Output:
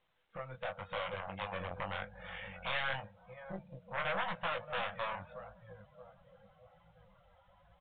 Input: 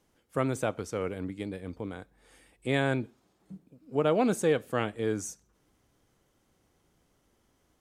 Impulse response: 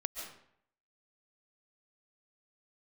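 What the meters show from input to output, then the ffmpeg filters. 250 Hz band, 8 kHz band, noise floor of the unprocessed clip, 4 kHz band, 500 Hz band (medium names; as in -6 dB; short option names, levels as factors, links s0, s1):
-19.5 dB, under -35 dB, -71 dBFS, -0.5 dB, -12.5 dB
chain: -filter_complex "[0:a]acompressor=threshold=0.00891:ratio=6,highshelf=f=3000:g=-3,asplit=2[s0][s1];[s1]adelay=628,lowpass=f=1400:p=1,volume=0.178,asplit=2[s2][s3];[s3]adelay=628,lowpass=f=1400:p=1,volume=0.46,asplit=2[s4][s5];[s5]adelay=628,lowpass=f=1400:p=1,volume=0.46,asplit=2[s6][s7];[s7]adelay=628,lowpass=f=1400:p=1,volume=0.46[s8];[s2][s4][s6][s8]amix=inputs=4:normalize=0[s9];[s0][s9]amix=inputs=2:normalize=0,dynaudnorm=f=460:g=3:m=4.73,aresample=8000,aeval=exprs='0.158*sin(PI/2*4.47*val(0)/0.158)':c=same,aresample=44100,afftfilt=real='re*(1-between(b*sr/4096,210,480))':imag='im*(1-between(b*sr/4096,210,480))':win_size=4096:overlap=0.75,flanger=delay=17.5:depth=5.5:speed=0.88,aeval=exprs='(tanh(8.91*val(0)+0.75)-tanh(0.75))/8.91':c=same,lowshelf=f=430:g=-11,afftdn=nr=18:nf=-48,volume=0.531" -ar 8000 -c:a pcm_mulaw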